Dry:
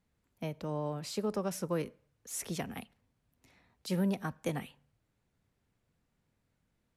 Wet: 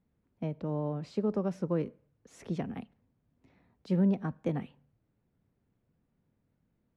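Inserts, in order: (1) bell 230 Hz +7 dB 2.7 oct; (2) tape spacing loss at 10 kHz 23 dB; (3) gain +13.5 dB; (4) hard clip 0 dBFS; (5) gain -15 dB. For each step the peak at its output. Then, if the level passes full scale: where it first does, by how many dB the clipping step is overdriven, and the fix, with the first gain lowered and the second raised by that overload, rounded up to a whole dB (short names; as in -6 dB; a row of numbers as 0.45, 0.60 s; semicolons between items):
-15.5, -16.0, -2.5, -2.5, -17.5 dBFS; no overload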